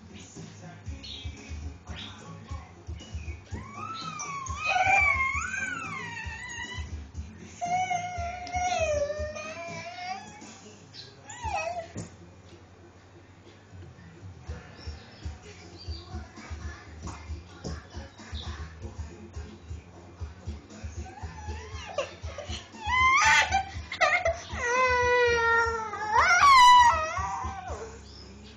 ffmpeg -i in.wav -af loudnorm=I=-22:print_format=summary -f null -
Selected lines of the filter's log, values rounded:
Input Integrated:    -23.8 LUFS
Input True Peak:     -12.1 dBTP
Input LRA:            20.5 LU
Input Threshold:     -37.4 LUFS